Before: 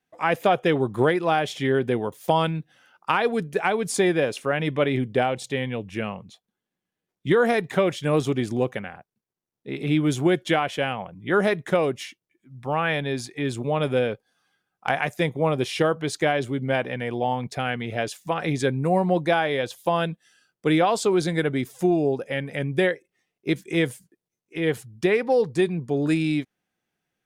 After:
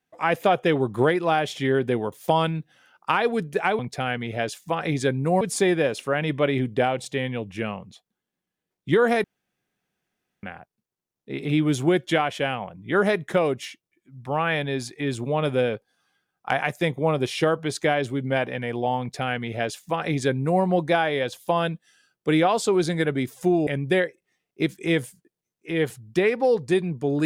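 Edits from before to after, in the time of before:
0:07.62–0:08.81: fill with room tone
0:17.38–0:19.00: duplicate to 0:03.79
0:22.05–0:22.54: remove

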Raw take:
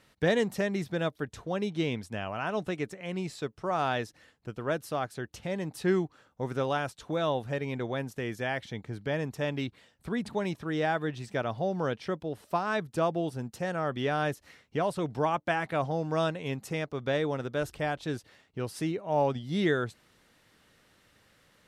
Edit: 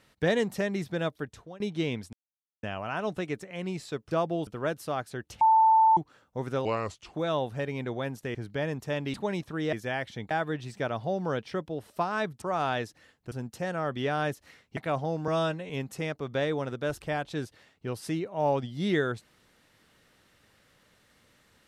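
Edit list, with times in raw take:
0:01.17–0:01.60: fade out, to −22 dB
0:02.13: splice in silence 0.50 s
0:03.61–0:04.51: swap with 0:12.96–0:13.32
0:05.45–0:06.01: beep over 887 Hz −16.5 dBFS
0:06.69–0:07.07: play speed 78%
0:08.28–0:08.86: move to 0:10.85
0:09.65–0:10.26: remove
0:14.77–0:15.63: remove
0:16.14–0:16.42: time-stretch 1.5×

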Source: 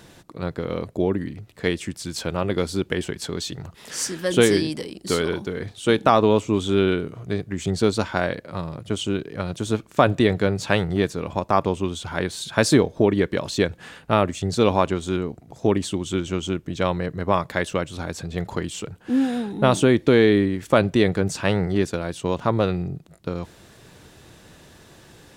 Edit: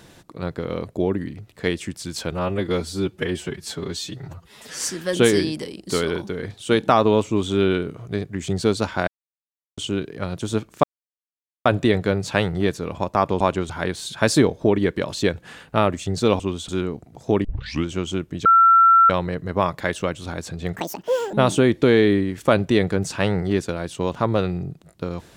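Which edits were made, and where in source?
0:02.32–0:03.97: time-stretch 1.5×
0:08.25–0:08.95: silence
0:10.01: splice in silence 0.82 s
0:11.76–0:12.05: swap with 0:14.75–0:15.04
0:15.80: tape start 0.41 s
0:16.81: insert tone 1,350 Hz −9.5 dBFS 0.64 s
0:18.48–0:19.58: play speed 194%

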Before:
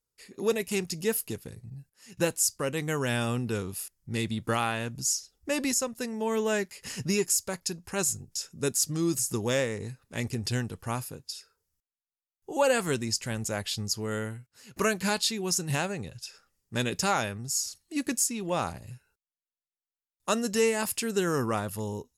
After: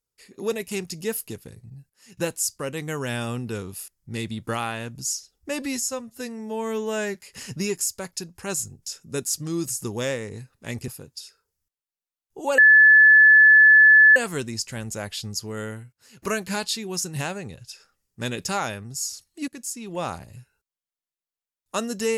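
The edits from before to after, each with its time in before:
0:05.62–0:06.64: time-stretch 1.5×
0:10.37–0:11.00: remove
0:12.70: insert tone 1,730 Hz −9 dBFS 1.58 s
0:18.02–0:18.52: fade in, from −15 dB

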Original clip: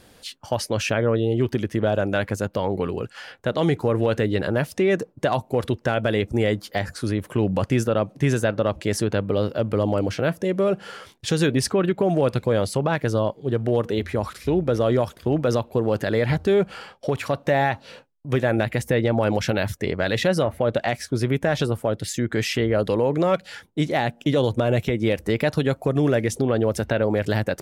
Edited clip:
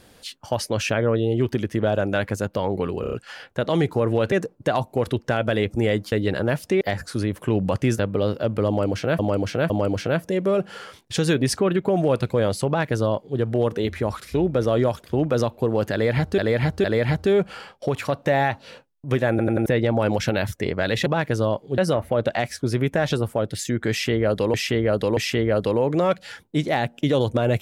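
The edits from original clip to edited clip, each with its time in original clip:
0:03.01: stutter 0.03 s, 5 plays
0:04.20–0:04.89: move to 0:06.69
0:07.87–0:09.14: remove
0:09.83–0:10.34: repeat, 3 plays
0:12.80–0:13.52: duplicate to 0:20.27
0:16.05–0:16.51: repeat, 3 plays
0:18.51: stutter in place 0.09 s, 4 plays
0:22.40–0:23.03: repeat, 3 plays

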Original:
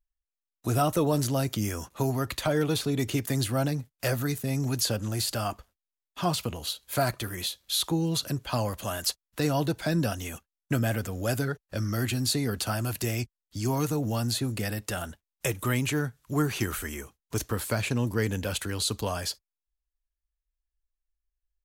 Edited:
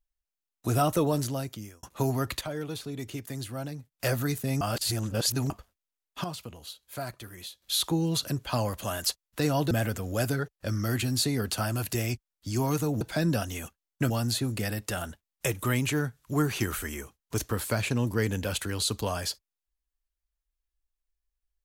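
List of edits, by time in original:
0:00.99–0:01.83: fade out
0:02.41–0:03.92: clip gain −9 dB
0:04.61–0:05.50: reverse
0:06.24–0:07.62: clip gain −10 dB
0:09.71–0:10.80: move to 0:14.10

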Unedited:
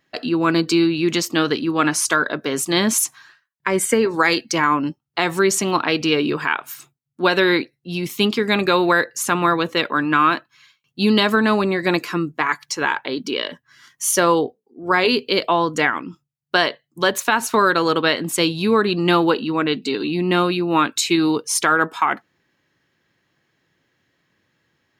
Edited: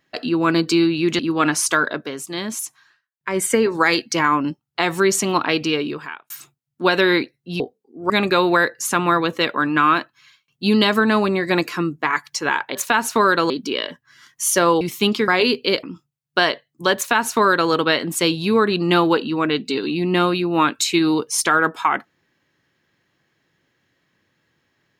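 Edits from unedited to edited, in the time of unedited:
0:01.19–0:01.58: remove
0:02.27–0:03.86: duck −9 dB, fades 0.29 s
0:05.93–0:06.69: fade out
0:07.99–0:08.46: swap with 0:14.42–0:14.92
0:15.47–0:16.00: remove
0:17.13–0:17.88: duplicate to 0:13.11

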